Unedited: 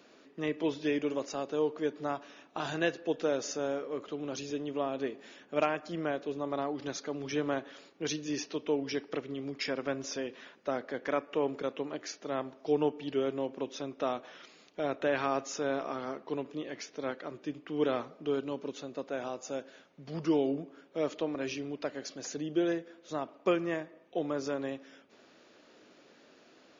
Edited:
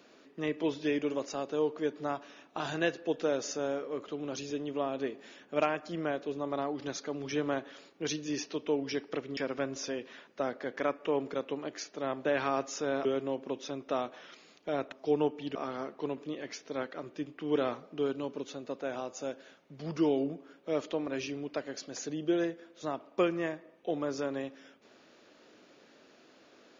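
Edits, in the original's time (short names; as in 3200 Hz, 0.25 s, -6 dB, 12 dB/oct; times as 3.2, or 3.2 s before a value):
9.37–9.65 cut
12.53–13.16 swap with 15.03–15.83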